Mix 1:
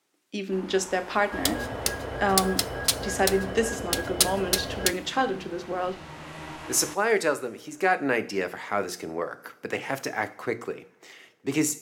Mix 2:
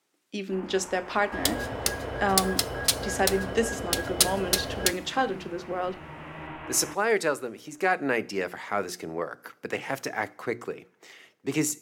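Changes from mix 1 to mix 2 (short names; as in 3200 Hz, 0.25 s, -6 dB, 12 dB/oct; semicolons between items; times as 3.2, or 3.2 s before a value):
speech: send -7.5 dB; first sound: add steep low-pass 2900 Hz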